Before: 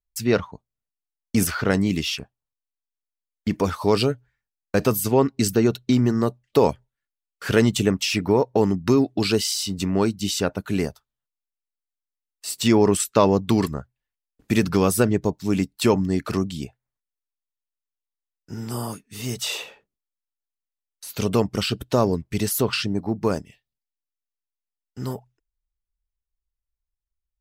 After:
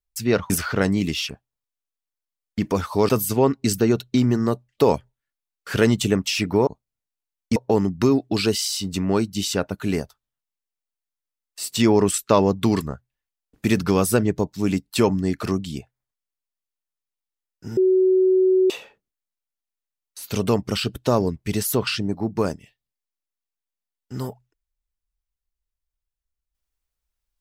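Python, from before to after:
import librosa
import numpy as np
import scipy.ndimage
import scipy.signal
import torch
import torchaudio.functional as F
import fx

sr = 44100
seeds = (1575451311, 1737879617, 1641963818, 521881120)

y = fx.edit(x, sr, fx.move(start_s=0.5, length_s=0.89, to_s=8.42),
    fx.cut(start_s=3.98, length_s=0.86),
    fx.bleep(start_s=18.63, length_s=0.93, hz=374.0, db=-13.5), tone=tone)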